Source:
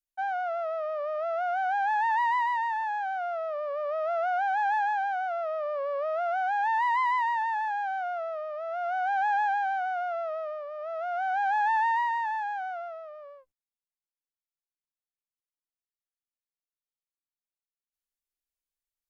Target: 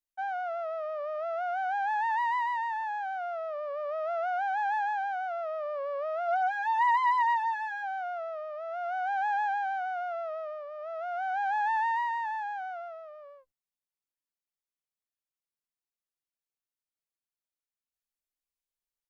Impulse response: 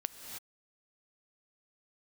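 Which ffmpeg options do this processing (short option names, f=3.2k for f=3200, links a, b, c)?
-filter_complex "[0:a]asplit=3[a][b][c];[a]afade=t=out:st=6.27:d=0.02[d];[b]aecho=1:1:4.2:0.83,afade=t=in:st=6.27:d=0.02,afade=t=out:st=7.82:d=0.02[e];[c]afade=t=in:st=7.82:d=0.02[f];[d][e][f]amix=inputs=3:normalize=0,volume=-3dB"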